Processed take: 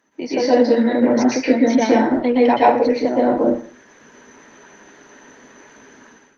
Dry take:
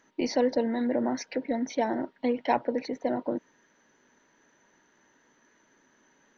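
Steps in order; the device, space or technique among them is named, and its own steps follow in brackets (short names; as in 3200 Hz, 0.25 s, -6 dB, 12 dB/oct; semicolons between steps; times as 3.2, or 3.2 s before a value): 0.44–1.99 dynamic EQ 680 Hz, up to -5 dB, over -37 dBFS, Q 0.86; far-field microphone of a smart speaker (reverb RT60 0.45 s, pre-delay 0.112 s, DRR -5 dB; HPF 130 Hz 12 dB/oct; AGC gain up to 15 dB; Opus 24 kbps 48000 Hz)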